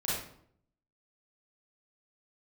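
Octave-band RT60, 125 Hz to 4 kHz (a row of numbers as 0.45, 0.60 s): 0.85, 0.80, 0.70, 0.60, 0.50, 0.45 s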